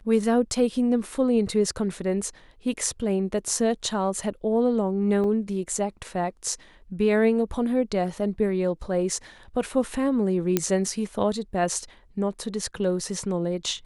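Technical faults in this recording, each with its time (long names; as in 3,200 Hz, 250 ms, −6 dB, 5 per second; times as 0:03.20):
0:05.24: drop-out 2.2 ms
0:10.57: click −6 dBFS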